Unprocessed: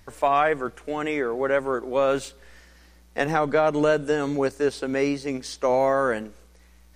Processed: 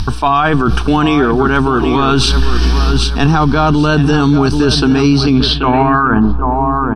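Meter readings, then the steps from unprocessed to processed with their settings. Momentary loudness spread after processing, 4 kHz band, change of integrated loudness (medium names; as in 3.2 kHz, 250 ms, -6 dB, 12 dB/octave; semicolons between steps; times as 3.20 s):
3 LU, +22.0 dB, +12.0 dB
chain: fade out at the end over 1.50 s; reverse; compression 6:1, threshold -36 dBFS, peak gain reduction 18.5 dB; reverse; bass shelf 320 Hz +11.5 dB; upward compressor, threshold -52 dBFS; treble shelf 7.7 kHz +5.5 dB; on a send: feedback delay 782 ms, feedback 37%, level -10.5 dB; on the sum: low-pass sweep 6.1 kHz -> 1 kHz, 5.14–6.25 s; static phaser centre 2 kHz, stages 6; loudness maximiser +35 dB; trim -2 dB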